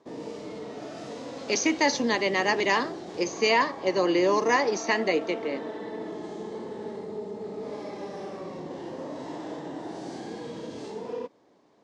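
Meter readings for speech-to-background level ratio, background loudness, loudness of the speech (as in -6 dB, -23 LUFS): 12.5 dB, -37.5 LUFS, -25.0 LUFS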